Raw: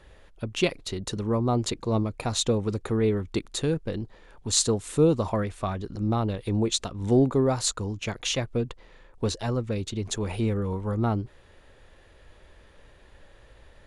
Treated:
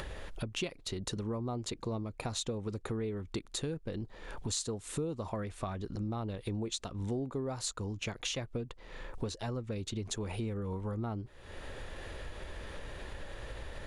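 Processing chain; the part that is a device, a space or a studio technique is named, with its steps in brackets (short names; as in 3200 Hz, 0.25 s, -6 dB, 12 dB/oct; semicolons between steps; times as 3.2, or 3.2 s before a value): upward and downward compression (upward compressor, threshold -37 dBFS; compressor 5:1, threshold -39 dBFS, peak gain reduction 21 dB); gain +3.5 dB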